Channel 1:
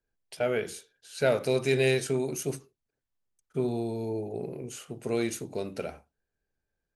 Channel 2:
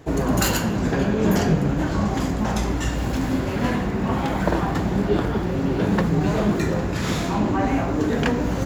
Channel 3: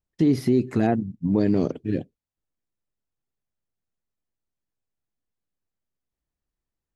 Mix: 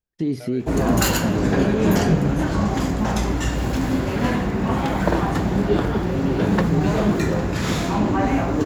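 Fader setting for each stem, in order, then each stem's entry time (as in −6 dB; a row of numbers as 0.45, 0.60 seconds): −12.0, +1.5, −4.0 decibels; 0.00, 0.60, 0.00 seconds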